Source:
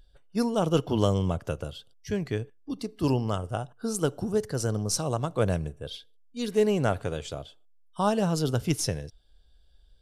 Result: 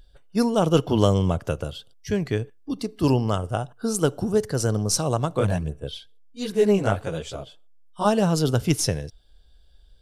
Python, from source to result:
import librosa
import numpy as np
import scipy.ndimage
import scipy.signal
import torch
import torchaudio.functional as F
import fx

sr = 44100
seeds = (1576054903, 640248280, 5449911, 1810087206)

y = fx.chorus_voices(x, sr, voices=2, hz=1.3, base_ms=17, depth_ms=3.5, mix_pct=65, at=(5.39, 8.04), fade=0.02)
y = F.gain(torch.from_numpy(y), 5.0).numpy()